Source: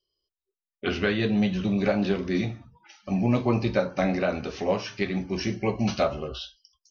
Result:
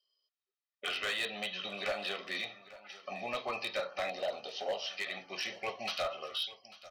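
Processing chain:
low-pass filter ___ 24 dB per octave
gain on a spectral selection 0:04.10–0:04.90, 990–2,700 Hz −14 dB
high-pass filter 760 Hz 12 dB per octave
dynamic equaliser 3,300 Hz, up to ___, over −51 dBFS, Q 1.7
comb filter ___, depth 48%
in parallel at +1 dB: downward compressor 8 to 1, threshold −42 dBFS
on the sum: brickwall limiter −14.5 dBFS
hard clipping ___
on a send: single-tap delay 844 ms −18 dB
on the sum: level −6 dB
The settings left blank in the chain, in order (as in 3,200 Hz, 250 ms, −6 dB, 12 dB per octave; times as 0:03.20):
5,200 Hz, +7 dB, 1.6 ms, −23 dBFS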